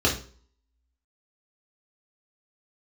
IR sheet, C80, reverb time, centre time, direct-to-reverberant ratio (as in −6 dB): 14.5 dB, 0.45 s, 20 ms, −4.0 dB